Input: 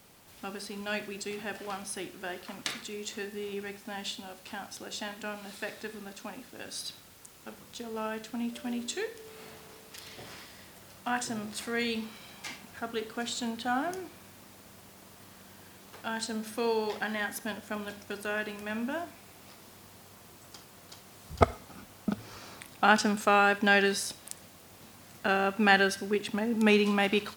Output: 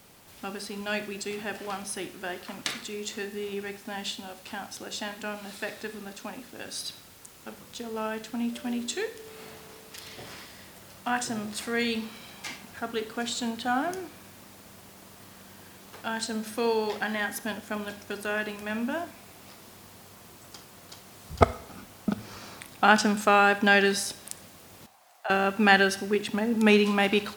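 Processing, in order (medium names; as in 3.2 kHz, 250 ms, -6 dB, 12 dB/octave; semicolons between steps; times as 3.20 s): 24.86–25.30 s: ladder high-pass 650 Hz, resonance 60%; Schroeder reverb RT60 0.9 s, combs from 30 ms, DRR 19.5 dB; trim +3 dB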